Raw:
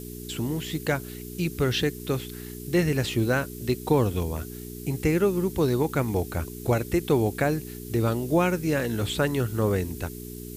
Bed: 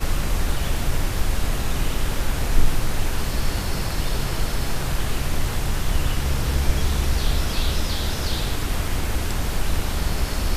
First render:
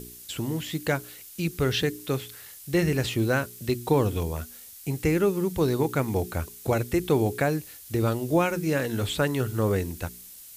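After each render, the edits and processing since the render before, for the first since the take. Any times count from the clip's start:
hum removal 60 Hz, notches 7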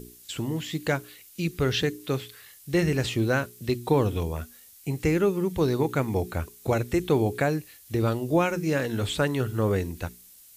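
noise reduction from a noise print 6 dB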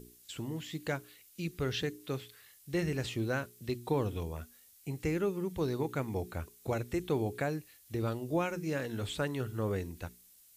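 level −9 dB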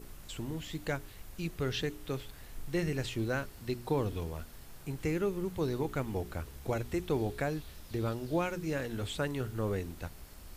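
mix in bed −27.5 dB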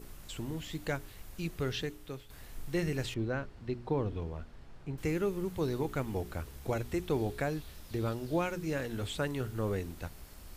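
0:01.60–0:02.30: fade out, to −10 dB
0:03.14–0:04.98: head-to-tape spacing loss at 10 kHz 22 dB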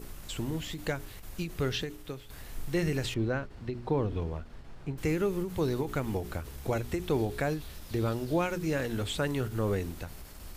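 in parallel at −2 dB: brickwall limiter −28.5 dBFS, peak gain reduction 8 dB
on the sum: every ending faded ahead of time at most 130 dB per second

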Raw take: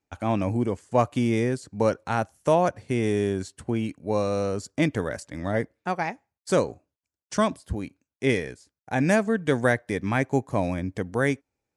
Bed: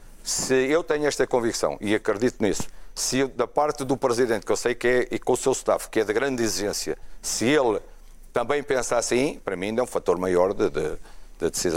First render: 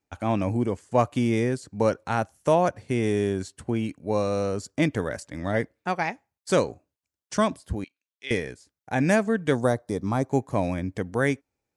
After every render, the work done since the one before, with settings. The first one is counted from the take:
0:05.30–0:06.69: dynamic equaliser 3,200 Hz, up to +4 dB, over −40 dBFS, Q 0.71
0:07.84–0:08.31: resonant band-pass 3,300 Hz, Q 2
0:09.55–0:10.30: flat-topped bell 2,200 Hz −13.5 dB 1.2 octaves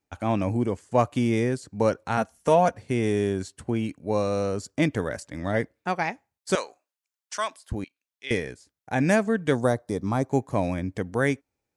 0:02.17–0:02.74: comb filter 4.3 ms, depth 58%
0:06.55–0:07.72: high-pass filter 940 Hz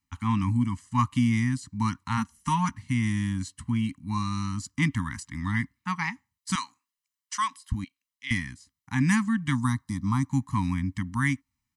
elliptic band-stop filter 270–990 Hz, stop band 40 dB
comb filter 1 ms, depth 56%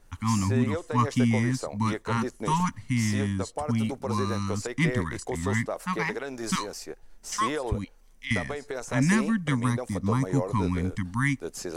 mix in bed −11 dB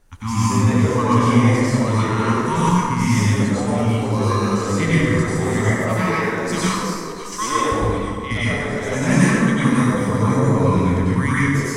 delay that plays each chunk backwards 285 ms, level −10 dB
dense smooth reverb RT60 1.8 s, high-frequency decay 0.55×, pre-delay 80 ms, DRR −8.5 dB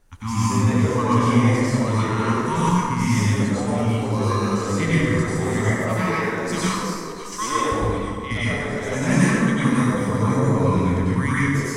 level −2.5 dB

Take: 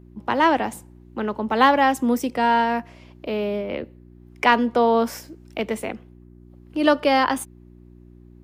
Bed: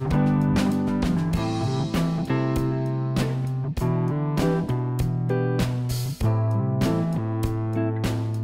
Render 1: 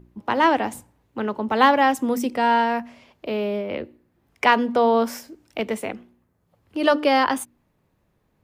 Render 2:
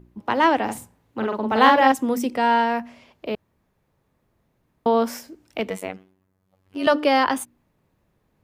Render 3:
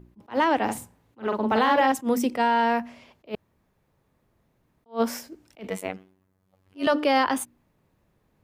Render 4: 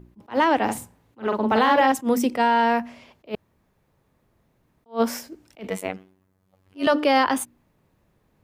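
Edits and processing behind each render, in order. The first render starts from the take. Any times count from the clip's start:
hum removal 60 Hz, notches 6
0:00.64–0:01.92: double-tracking delay 45 ms −3 dB; 0:03.35–0:04.86: fill with room tone; 0:05.70–0:06.87: phases set to zero 94.3 Hz
brickwall limiter −12.5 dBFS, peak gain reduction 10 dB; level that may rise only so fast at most 310 dB per second
level +2.5 dB

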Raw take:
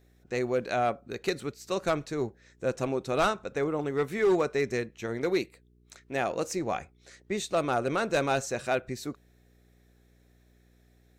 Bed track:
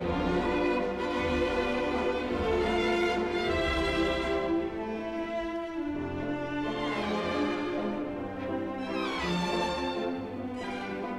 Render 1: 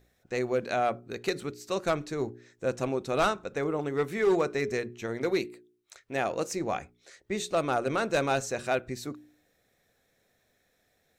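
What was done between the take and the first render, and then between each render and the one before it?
hum removal 60 Hz, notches 7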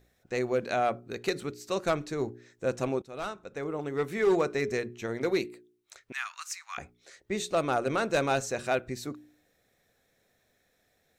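0:03.02–0:04.24: fade in, from −17 dB
0:06.12–0:06.78: Butterworth high-pass 1,100 Hz 48 dB per octave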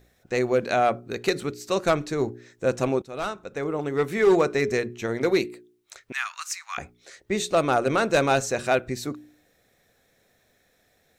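level +6 dB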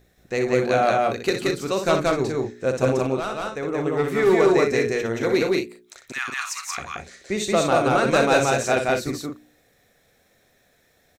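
loudspeakers that aren't time-aligned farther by 21 metres −7 dB, 61 metres −1 dB, 74 metres −7 dB

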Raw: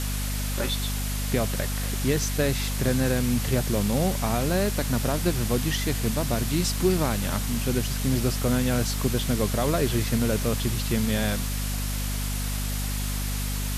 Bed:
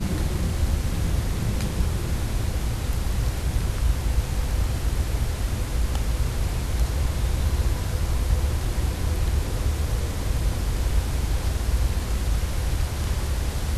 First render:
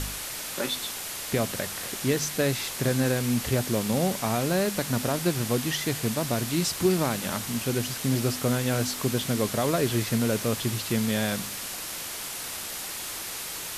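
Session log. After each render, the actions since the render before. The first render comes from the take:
hum removal 50 Hz, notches 5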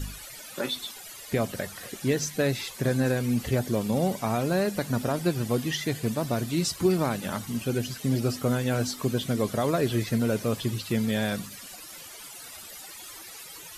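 broadband denoise 15 dB, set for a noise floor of −36 dBFS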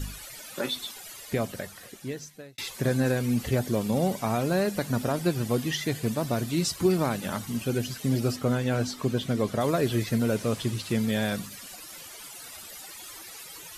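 0:01.14–0:02.58: fade out
0:08.36–0:09.61: high-shelf EQ 7,400 Hz −9 dB
0:10.37–0:10.98: variable-slope delta modulation 64 kbit/s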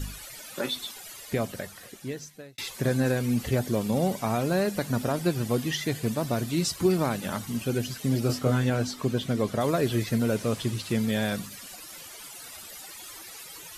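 0:08.27–0:08.70: double-tracking delay 23 ms −3 dB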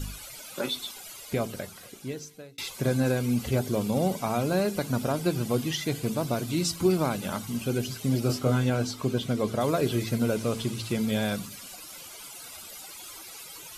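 notch filter 1,800 Hz, Q 6.8
hum removal 56.21 Hz, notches 8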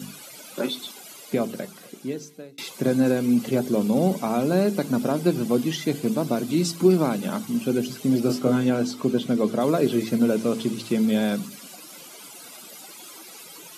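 high-pass filter 160 Hz 24 dB per octave
parametric band 240 Hz +7.5 dB 2.4 octaves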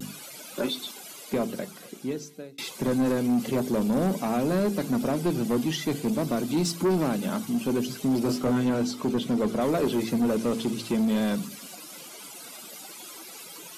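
soft clipping −19 dBFS, distortion −12 dB
pitch vibrato 0.31 Hz 16 cents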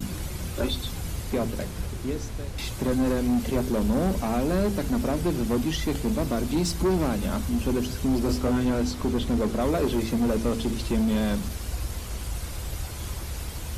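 mix in bed −8.5 dB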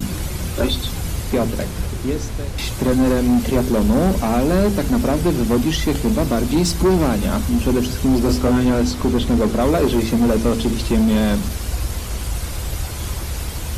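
level +8 dB

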